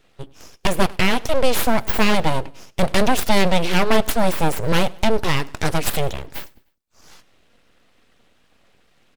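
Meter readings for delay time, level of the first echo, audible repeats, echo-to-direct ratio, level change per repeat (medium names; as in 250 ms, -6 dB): 101 ms, -24.0 dB, 2, -23.0 dB, -7.0 dB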